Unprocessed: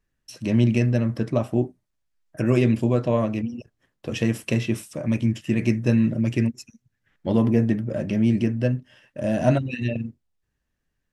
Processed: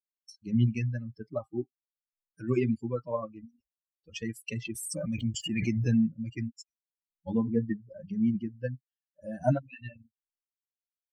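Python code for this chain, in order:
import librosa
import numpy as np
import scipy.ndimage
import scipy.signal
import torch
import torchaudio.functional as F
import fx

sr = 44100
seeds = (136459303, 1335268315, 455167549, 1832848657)

y = fx.bin_expand(x, sr, power=3.0)
y = fx.notch(y, sr, hz=3800.0, q=5.4)
y = fx.pre_swell(y, sr, db_per_s=28.0, at=(4.65, 6.15))
y = F.gain(torch.from_numpy(y), -2.5).numpy()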